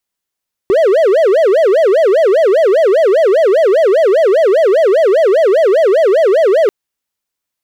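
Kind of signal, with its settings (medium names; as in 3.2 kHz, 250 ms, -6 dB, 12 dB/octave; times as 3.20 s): siren wail 372–665 Hz 5 per s triangle -4.5 dBFS 5.99 s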